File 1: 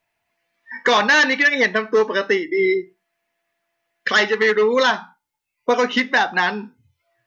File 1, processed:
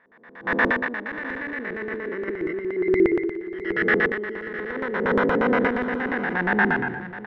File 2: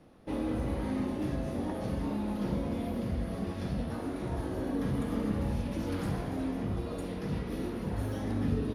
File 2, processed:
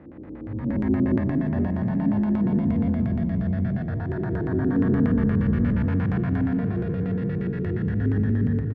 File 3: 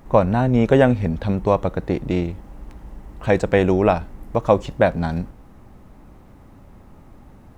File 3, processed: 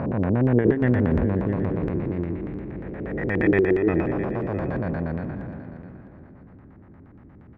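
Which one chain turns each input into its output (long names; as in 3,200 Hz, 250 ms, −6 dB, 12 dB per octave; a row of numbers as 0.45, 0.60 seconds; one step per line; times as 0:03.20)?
spectrum smeared in time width 783 ms
noise reduction from a noise print of the clip's start 14 dB
high-pass filter 83 Hz 12 dB per octave
compressor whose output falls as the input rises −31 dBFS, ratio −0.5
auto-filter low-pass square 8.5 Hz 360–1,800 Hz
low-shelf EQ 180 Hz +9 dB
repeating echo 657 ms, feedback 25%, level −14 dB
loudness normalisation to −24 LKFS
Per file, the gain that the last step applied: +4.0, +9.5, +8.5 decibels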